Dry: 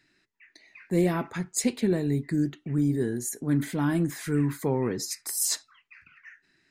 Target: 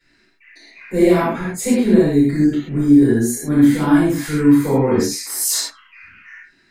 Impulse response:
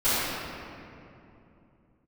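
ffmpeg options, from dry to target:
-filter_complex "[0:a]asettb=1/sr,asplit=3[s0][s1][s2];[s0]atrim=end=1.294[s3];[s1]atrim=start=1.29:end=1.85,asetpts=PTS-STARTPTS,afade=t=in:d=0.004:c=qsin,afade=t=out:st=0.556:d=0.004:c=qsin,equalizer=f=4900:w=0.84:g=-8[s4];[s2]atrim=start=1.846[s5];[s3][s4]acrossfade=d=0.004:c1=hsin:c2=qsin[s6];[s6][s5]acrossfade=d=0.004:c1=qsin:c2=hsin[s7];[1:a]atrim=start_sample=2205,atrim=end_sample=6615[s8];[s7][s8]afir=irnorm=-1:irlink=0,volume=0.708"

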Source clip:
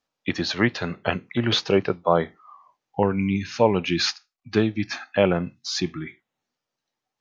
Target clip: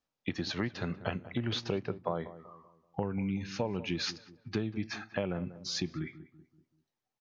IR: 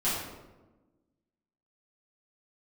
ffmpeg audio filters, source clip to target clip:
-filter_complex "[0:a]lowshelf=f=240:g=7.5,acompressor=threshold=0.0794:ratio=6,asplit=2[s0][s1];[s1]adelay=191,lowpass=f=1100:p=1,volume=0.2,asplit=2[s2][s3];[s3]adelay=191,lowpass=f=1100:p=1,volume=0.43,asplit=2[s4][s5];[s5]adelay=191,lowpass=f=1100:p=1,volume=0.43,asplit=2[s6][s7];[s7]adelay=191,lowpass=f=1100:p=1,volume=0.43[s8];[s2][s4][s6][s8]amix=inputs=4:normalize=0[s9];[s0][s9]amix=inputs=2:normalize=0,volume=0.422"

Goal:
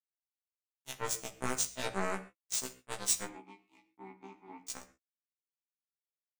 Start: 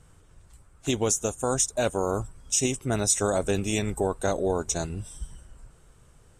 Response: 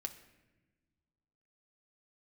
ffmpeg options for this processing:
-filter_complex "[0:a]acrossover=split=320|870[s0][s1][s2];[s0]alimiter=level_in=1.41:limit=0.0631:level=0:latency=1:release=65,volume=0.708[s3];[s3][s1][s2]amix=inputs=3:normalize=0,acrusher=bits=2:mix=0:aa=0.5,asplit=3[s4][s5][s6];[s4]afade=t=out:st=3.24:d=0.02[s7];[s5]asplit=3[s8][s9][s10];[s8]bandpass=f=300:t=q:w=8,volume=1[s11];[s9]bandpass=f=870:t=q:w=8,volume=0.501[s12];[s10]bandpass=f=2240:t=q:w=8,volume=0.355[s13];[s11][s12][s13]amix=inputs=3:normalize=0,afade=t=in:st=3.24:d=0.02,afade=t=out:st=4.61:d=0.02[s14];[s6]afade=t=in:st=4.61:d=0.02[s15];[s7][s14][s15]amix=inputs=3:normalize=0[s16];[1:a]atrim=start_sample=2205,afade=t=out:st=0.19:d=0.01,atrim=end_sample=8820[s17];[s16][s17]afir=irnorm=-1:irlink=0,afftfilt=real='re*1.73*eq(mod(b,3),0)':imag='im*1.73*eq(mod(b,3),0)':win_size=2048:overlap=0.75"

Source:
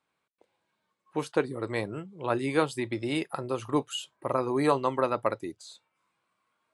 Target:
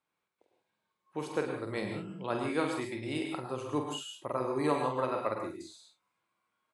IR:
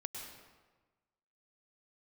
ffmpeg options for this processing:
-filter_complex "[0:a]asettb=1/sr,asplit=3[s0][s1][s2];[s0]atrim=end=1.774[s3];[s1]atrim=start=1.77:end=2.4,asetpts=PTS-STARTPTS,afade=t=in:d=0.004:c=qsin,afade=t=out:st=0.626:d=0.004:c=qsin,equalizer=f=200:t=o:w=0.33:g=10,equalizer=f=3150:t=o:w=0.33:g=6,equalizer=f=5000:t=o:w=0.33:g=10[s4];[s2]atrim=start=2.396[s5];[s3][s4]acrossfade=d=0.004:c1=hsin:c2=qsin[s6];[s6][s5]acrossfade=d=0.004:c1=qsin:c2=hsin,aecho=1:1:47|69:0.473|0.15[s7];[1:a]atrim=start_sample=2205,afade=t=out:st=0.21:d=0.01,atrim=end_sample=9702[s8];[s7][s8]afir=irnorm=-1:irlink=0,volume=0.708"

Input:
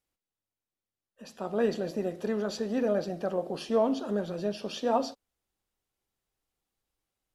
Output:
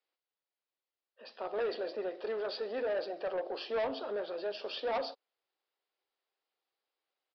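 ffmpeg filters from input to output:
-af "highpass=f=390:w=0.5412,highpass=f=390:w=1.3066,aresample=11025,asoftclip=type=tanh:threshold=0.0355,aresample=44100"

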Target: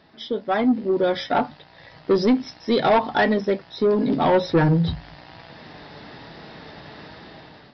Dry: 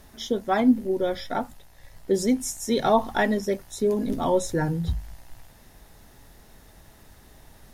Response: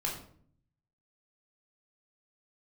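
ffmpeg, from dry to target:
-af "highpass=150,dynaudnorm=f=320:g=5:m=5.62,flanger=delay=6:depth=1:regen=66:speed=1.1:shape=triangular,aresample=11025,asoftclip=type=tanh:threshold=0.15,aresample=44100,volume=1.68"

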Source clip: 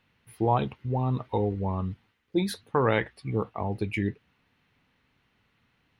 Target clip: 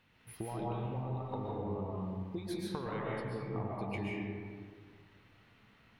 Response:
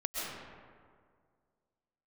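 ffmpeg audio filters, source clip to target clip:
-filter_complex "[0:a]acompressor=threshold=0.0112:ratio=12[s0];[1:a]atrim=start_sample=2205[s1];[s0][s1]afir=irnorm=-1:irlink=0,volume=1.12"

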